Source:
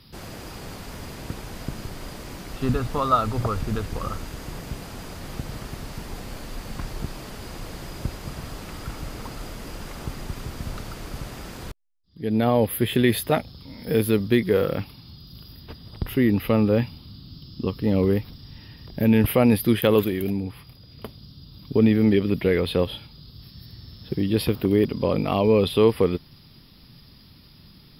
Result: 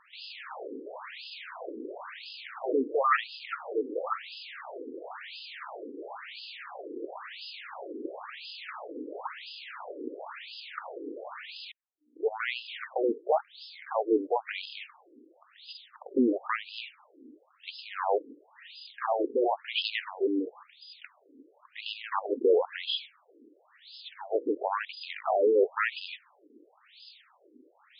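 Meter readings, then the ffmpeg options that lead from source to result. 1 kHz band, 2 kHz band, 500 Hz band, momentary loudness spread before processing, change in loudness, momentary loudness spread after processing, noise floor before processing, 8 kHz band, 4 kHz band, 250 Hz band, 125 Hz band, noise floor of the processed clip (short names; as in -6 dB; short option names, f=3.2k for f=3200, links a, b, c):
-2.0 dB, -2.0 dB, -6.0 dB, 19 LU, -9.5 dB, 19 LU, -50 dBFS, under -40 dB, -2.5 dB, -13.0 dB, under -40 dB, -65 dBFS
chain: -af "aeval=exprs='0.473*sin(PI/2*3.55*val(0)/0.473)':c=same,aeval=exprs='val(0)+0.00631*(sin(2*PI*60*n/s)+sin(2*PI*2*60*n/s)/2+sin(2*PI*3*60*n/s)/3+sin(2*PI*4*60*n/s)/4+sin(2*PI*5*60*n/s)/5)':c=same,afftfilt=real='re*between(b*sr/1024,350*pow(3700/350,0.5+0.5*sin(2*PI*0.97*pts/sr))/1.41,350*pow(3700/350,0.5+0.5*sin(2*PI*0.97*pts/sr))*1.41)':imag='im*between(b*sr/1024,350*pow(3700/350,0.5+0.5*sin(2*PI*0.97*pts/sr))/1.41,350*pow(3700/350,0.5+0.5*sin(2*PI*0.97*pts/sr))*1.41)':win_size=1024:overlap=0.75,volume=-9dB"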